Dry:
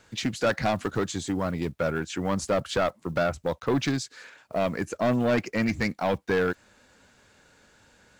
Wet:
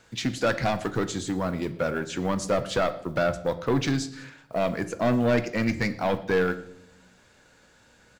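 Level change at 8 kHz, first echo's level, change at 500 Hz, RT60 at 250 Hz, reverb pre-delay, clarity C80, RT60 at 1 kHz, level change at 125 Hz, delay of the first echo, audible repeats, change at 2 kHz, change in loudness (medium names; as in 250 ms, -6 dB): +0.5 dB, -23.0 dB, +1.0 dB, 1.1 s, 4 ms, 17.0 dB, 0.70 s, +1.5 dB, 115 ms, 1, +0.5 dB, +0.5 dB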